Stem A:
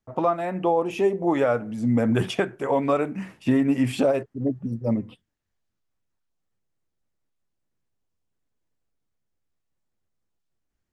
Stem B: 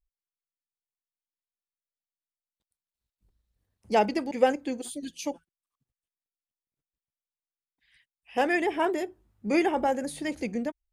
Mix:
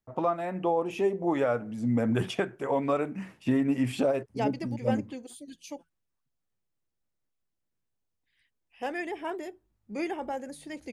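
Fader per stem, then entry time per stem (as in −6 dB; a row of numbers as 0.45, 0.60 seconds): −5.0, −8.5 decibels; 0.00, 0.45 seconds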